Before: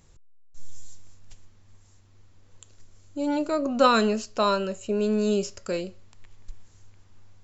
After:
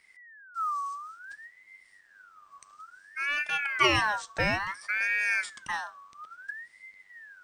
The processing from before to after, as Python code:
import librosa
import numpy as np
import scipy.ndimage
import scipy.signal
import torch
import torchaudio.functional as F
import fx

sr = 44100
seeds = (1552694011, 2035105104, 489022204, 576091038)

y = fx.quant_companded(x, sr, bits=8)
y = fx.ring_lfo(y, sr, carrier_hz=1600.0, swing_pct=30, hz=0.58)
y = y * 10.0 ** (-1.5 / 20.0)